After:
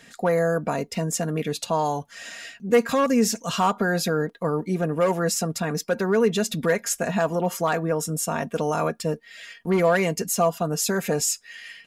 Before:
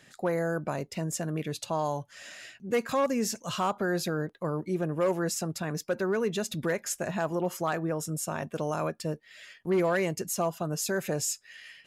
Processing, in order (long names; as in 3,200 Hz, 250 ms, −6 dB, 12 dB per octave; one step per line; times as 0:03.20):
comb filter 4.3 ms, depth 51%
level +6 dB